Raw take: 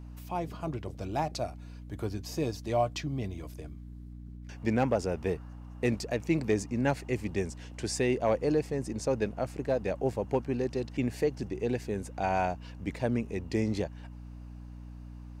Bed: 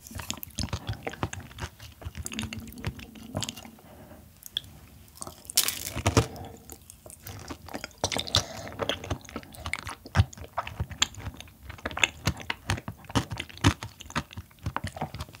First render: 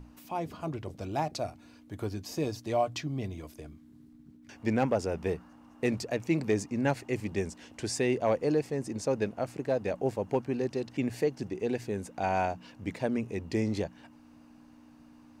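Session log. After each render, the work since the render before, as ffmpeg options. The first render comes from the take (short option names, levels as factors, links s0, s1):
-af "bandreject=f=60:t=h:w=6,bandreject=f=120:t=h:w=6,bandreject=f=180:t=h:w=6"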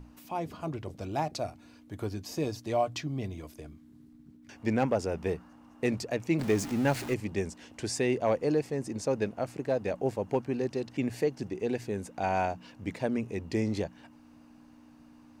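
-filter_complex "[0:a]asettb=1/sr,asplit=3[s0][s1][s2];[s0]atrim=end=6.394[s3];[s1]atrim=start=6.39:end=7.14,asetpts=PTS-STARTPTS,afade=t=in:d=0.004:c=qsin,afade=t=out:st=0.746:d=0.004:c=qsin,aeval=exprs='val(0)+0.5*0.0188*sgn(val(0))':c=same[s4];[s2]atrim=start=7.136[s5];[s3][s4]acrossfade=d=0.004:c1=hsin:c2=qsin[s6];[s6][s5]acrossfade=d=0.004:c1=qsin:c2=hsin"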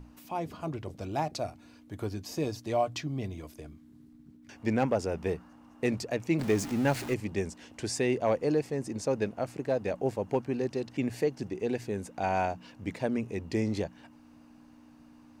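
-af anull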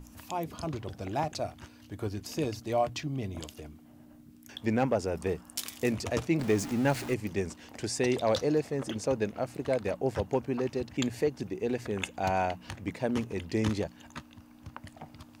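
-filter_complex "[1:a]volume=0.224[s0];[0:a][s0]amix=inputs=2:normalize=0"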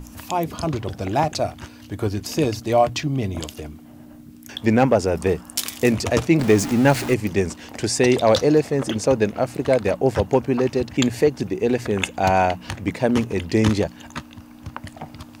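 -af "volume=3.55"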